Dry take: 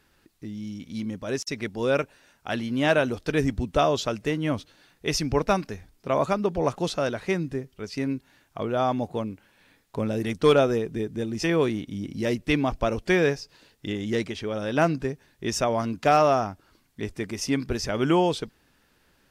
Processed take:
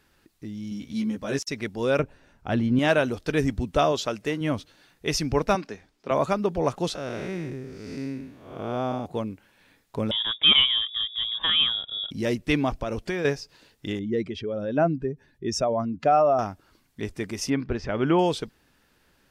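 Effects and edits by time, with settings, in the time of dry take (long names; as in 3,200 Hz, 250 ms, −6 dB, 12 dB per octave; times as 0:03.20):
0:00.70–0:01.39: double-tracking delay 14 ms −2 dB
0:01.99–0:02.79: spectral tilt −3 dB per octave
0:03.92–0:04.41: low-shelf EQ 140 Hz −9 dB
0:05.55–0:06.11: three-way crossover with the lows and the highs turned down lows −14 dB, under 190 Hz, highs −14 dB, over 7,100 Hz
0:06.95–0:09.06: spectrum smeared in time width 277 ms
0:10.11–0:12.11: voice inversion scrambler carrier 3,600 Hz
0:12.72–0:13.25: downward compressor 10 to 1, threshold −24 dBFS
0:13.99–0:16.39: expanding power law on the bin magnitudes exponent 1.6
0:17.50–0:18.19: low-pass filter 2,600 Hz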